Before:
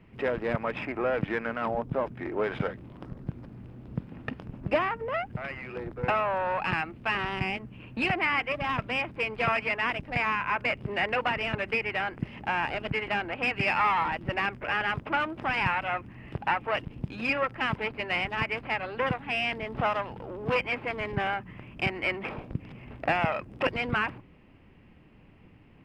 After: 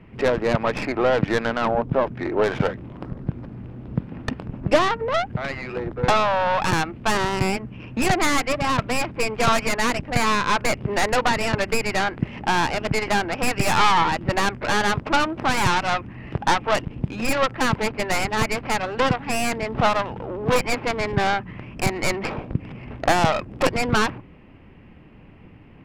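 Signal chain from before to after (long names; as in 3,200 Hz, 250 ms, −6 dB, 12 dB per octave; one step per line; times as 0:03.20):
stylus tracing distortion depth 0.38 ms
low-pass filter 3,300 Hz 6 dB per octave
level +8.5 dB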